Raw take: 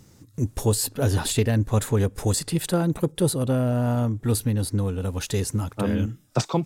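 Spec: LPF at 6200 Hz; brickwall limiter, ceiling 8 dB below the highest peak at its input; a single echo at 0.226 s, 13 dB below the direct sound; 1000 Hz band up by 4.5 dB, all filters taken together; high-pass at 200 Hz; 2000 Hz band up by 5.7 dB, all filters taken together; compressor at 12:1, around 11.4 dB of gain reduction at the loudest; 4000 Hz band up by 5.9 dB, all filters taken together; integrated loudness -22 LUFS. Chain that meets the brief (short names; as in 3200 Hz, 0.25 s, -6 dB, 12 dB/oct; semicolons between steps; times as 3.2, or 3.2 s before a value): HPF 200 Hz; LPF 6200 Hz; bell 1000 Hz +4.5 dB; bell 2000 Hz +4.5 dB; bell 4000 Hz +6.5 dB; compressor 12:1, threshold -29 dBFS; limiter -23.5 dBFS; echo 0.226 s -13 dB; gain +13 dB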